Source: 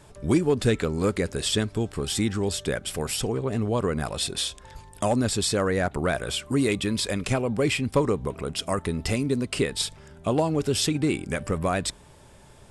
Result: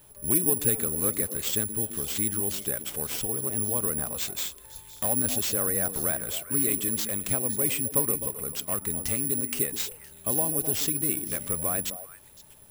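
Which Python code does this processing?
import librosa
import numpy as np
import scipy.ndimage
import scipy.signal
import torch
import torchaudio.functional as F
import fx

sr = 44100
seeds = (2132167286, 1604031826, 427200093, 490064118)

y = fx.echo_stepped(x, sr, ms=129, hz=240.0, octaves=1.4, feedback_pct=70, wet_db=-6.5)
y = (np.kron(y[::4], np.eye(4)[0]) * 4)[:len(y)]
y = y * librosa.db_to_amplitude(-9.0)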